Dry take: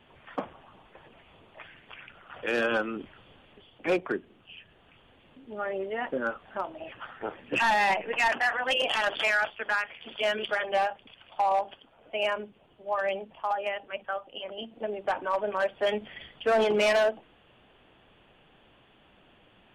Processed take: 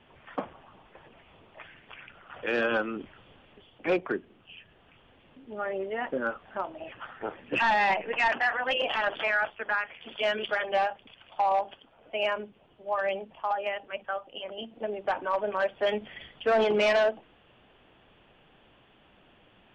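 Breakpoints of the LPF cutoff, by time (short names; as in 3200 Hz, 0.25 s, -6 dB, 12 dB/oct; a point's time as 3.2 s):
8.36 s 4000 Hz
9.14 s 2300 Hz
9.74 s 2300 Hz
10.2 s 4900 Hz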